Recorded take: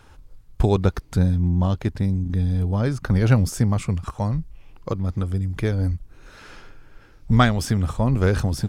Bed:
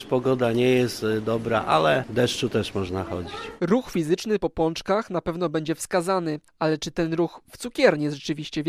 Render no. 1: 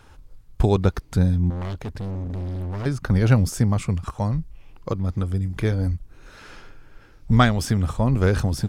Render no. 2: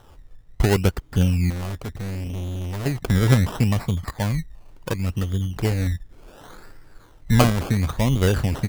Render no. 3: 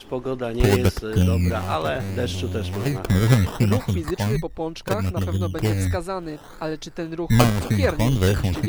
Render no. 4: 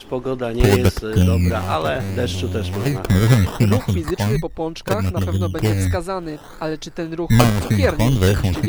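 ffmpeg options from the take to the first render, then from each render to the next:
ffmpeg -i in.wav -filter_complex "[0:a]asettb=1/sr,asplit=3[link_01][link_02][link_03];[link_01]atrim=end=1.504[link_04];[link_02]atrim=start=1.5:end=2.86,asetpts=PTS-STARTPTS,afade=type=in:duration=0.004:curve=qsin,afade=type=out:start_time=1.356:duration=0.004:curve=qsin,asoftclip=type=hard:threshold=-27dB[link_05];[link_03]atrim=start=2.856[link_06];[link_04][link_05]acrossfade=duration=0.004:curve1=hsin:curve2=qsin[link_07];[link_07][link_06]acrossfade=duration=0.004:curve1=qsin:curve2=hsin,asettb=1/sr,asplit=3[link_08][link_09][link_10];[link_08]atrim=end=5.434[link_11];[link_09]atrim=start=5.43:end=5.87,asetpts=PTS-STARTPTS,afade=type=in:duration=0.004:curve=qsin,afade=type=out:start_time=0.436:duration=0.004:curve=qsin,asplit=2[link_12][link_13];[link_13]adelay=27,volume=-13dB[link_14];[link_12][link_14]amix=inputs=2:normalize=0,atrim=end_sample=19404[link_15];[link_10]atrim=start=5.866[link_16];[link_11][link_15]acrossfade=duration=0.004:curve1=hsin:curve2=qsin[link_17];[link_17][link_16]acrossfade=duration=0.004:curve1=qsin:curve2=hsin" out.wav
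ffmpeg -i in.wav -af "acrusher=samples=19:mix=1:aa=0.000001:lfo=1:lforange=11.4:lforate=0.7" out.wav
ffmpeg -i in.wav -i bed.wav -filter_complex "[1:a]volume=-5dB[link_01];[0:a][link_01]amix=inputs=2:normalize=0" out.wav
ffmpeg -i in.wav -af "volume=3.5dB,alimiter=limit=-1dB:level=0:latency=1" out.wav

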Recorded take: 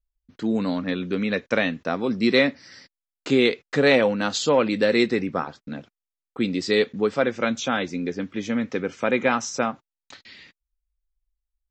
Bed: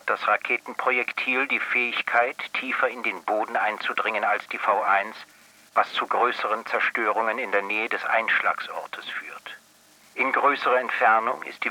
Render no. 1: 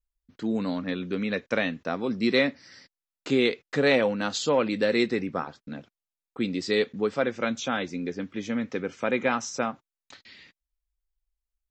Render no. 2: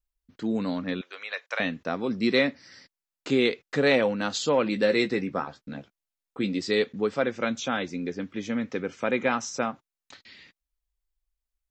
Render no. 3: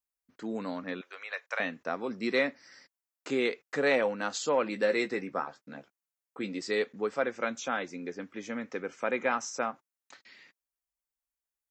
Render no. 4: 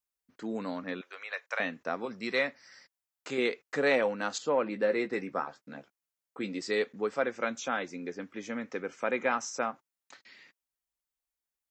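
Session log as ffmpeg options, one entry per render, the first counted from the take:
ffmpeg -i in.wav -af "volume=-4dB" out.wav
ffmpeg -i in.wav -filter_complex "[0:a]asettb=1/sr,asplit=3[link_01][link_02][link_03];[link_01]atrim=end=1.014[link_04];[link_02]atrim=start=1.01:end=1.6,asetpts=PTS-STARTPTS,afade=type=in:duration=0.004:curve=qsin,afade=type=out:start_time=0.586:duration=0.004:curve=qsin,highpass=frequency=700:width=0.5412,highpass=frequency=700:width=1.3066[link_05];[link_03]atrim=start=1.596[link_06];[link_04][link_05]acrossfade=duration=0.004:curve1=hsin:curve2=qsin[link_07];[link_07][link_06]acrossfade=duration=0.004:curve1=qsin:curve2=hsin,asettb=1/sr,asplit=3[link_08][link_09][link_10];[link_08]atrim=end=4.634[link_11];[link_09]atrim=start=4.63:end=6.59,asetpts=PTS-STARTPTS,afade=type=in:duration=0.004:curve=qsin,afade=type=out:start_time=1.956:duration=0.004:curve=qsin,asplit=2[link_12][link_13];[link_13]adelay=15,volume=-8dB[link_14];[link_12][link_14]amix=inputs=2:normalize=0,atrim=end_sample=86436[link_15];[link_10]atrim=start=6.586[link_16];[link_11][link_15]acrossfade=duration=0.004:curve1=hsin:curve2=qsin[link_17];[link_17][link_16]acrossfade=duration=0.004:curve1=qsin:curve2=hsin" out.wav
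ffmpeg -i in.wav -af "highpass=frequency=620:poles=1,equalizer=frequency=3600:width=1.2:gain=-9" out.wav
ffmpeg -i in.wav -filter_complex "[0:a]asettb=1/sr,asplit=3[link_01][link_02][link_03];[link_01]atrim=end=2.054[link_04];[link_02]atrim=start=2.05:end=3.38,asetpts=PTS-STARTPTS,afade=type=in:duration=0.004:curve=qsin,afade=type=out:start_time=1.326:duration=0.004:curve=qsin,equalizer=frequency=300:width=1.3:gain=-7.5[link_05];[link_03]atrim=start=3.376[link_06];[link_04][link_05]acrossfade=duration=0.004:curve1=hsin:curve2=qsin[link_07];[link_07][link_06]acrossfade=duration=0.004:curve1=qsin:curve2=hsin,asettb=1/sr,asplit=3[link_08][link_09][link_10];[link_08]atrim=end=4.384[link_11];[link_09]atrim=start=4.38:end=5.13,asetpts=PTS-STARTPTS,afade=type=in:duration=0.004:curve=qsin,afade=type=out:start_time=0.746:duration=0.004:curve=qsin,lowpass=frequency=1700:poles=1[link_12];[link_10]atrim=start=5.126[link_13];[link_11][link_12]acrossfade=duration=0.004:curve1=hsin:curve2=qsin[link_14];[link_14][link_13]acrossfade=duration=0.004:curve1=qsin:curve2=hsin" out.wav

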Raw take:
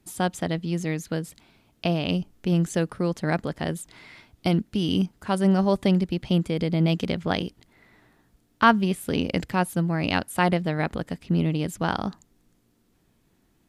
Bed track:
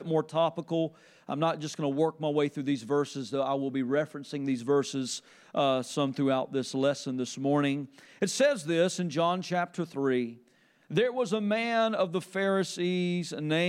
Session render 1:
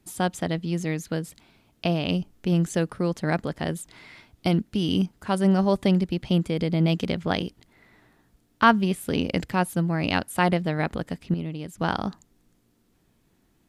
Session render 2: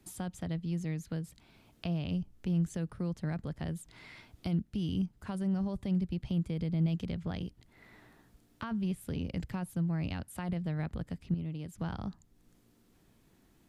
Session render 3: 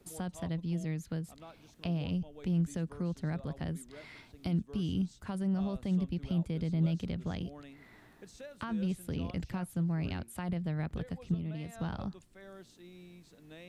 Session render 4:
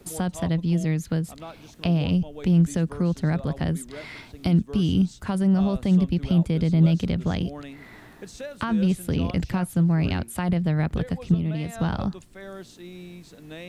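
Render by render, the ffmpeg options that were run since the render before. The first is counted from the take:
ffmpeg -i in.wav -filter_complex "[0:a]asplit=3[link_01][link_02][link_03];[link_01]atrim=end=11.342[link_04];[link_02]atrim=start=11.338:end=11.782,asetpts=PTS-STARTPTS,volume=-8dB[link_05];[link_03]atrim=start=11.778[link_06];[link_04][link_05]acrossfade=duration=0.004:curve1=hsin:curve2=hsin[link_07];[link_07][link_06]acrossfade=duration=0.004:curve1=hsin:curve2=hsin" out.wav
ffmpeg -i in.wav -filter_complex "[0:a]alimiter=limit=-14dB:level=0:latency=1:release=11,acrossover=split=150[link_01][link_02];[link_02]acompressor=threshold=-52dB:ratio=2[link_03];[link_01][link_03]amix=inputs=2:normalize=0" out.wav
ffmpeg -i in.wav -i bed.wav -filter_complex "[1:a]volume=-24dB[link_01];[0:a][link_01]amix=inputs=2:normalize=0" out.wav
ffmpeg -i in.wav -af "volume=11.5dB" out.wav

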